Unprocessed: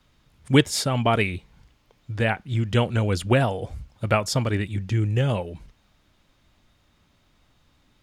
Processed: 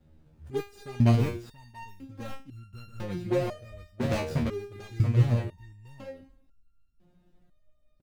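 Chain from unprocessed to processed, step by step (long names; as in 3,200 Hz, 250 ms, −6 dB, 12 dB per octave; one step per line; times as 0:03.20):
running median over 41 samples
dynamic equaliser 750 Hz, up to −5 dB, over −36 dBFS, Q 0.83
in parallel at +1 dB: downward compressor, threshold −36 dBFS, peak gain reduction 21 dB
on the sum: single-tap delay 682 ms −5.5 dB
step-sequenced resonator 2 Hz 78–1,400 Hz
level +6.5 dB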